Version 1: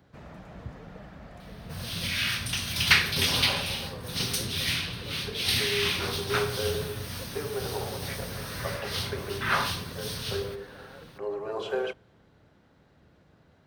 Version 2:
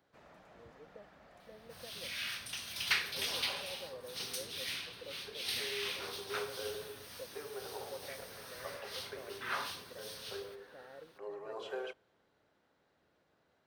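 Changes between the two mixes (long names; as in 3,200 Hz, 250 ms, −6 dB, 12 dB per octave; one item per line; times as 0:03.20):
first sound −9.5 dB
second sound −11.5 dB
master: add bass and treble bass −14 dB, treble +1 dB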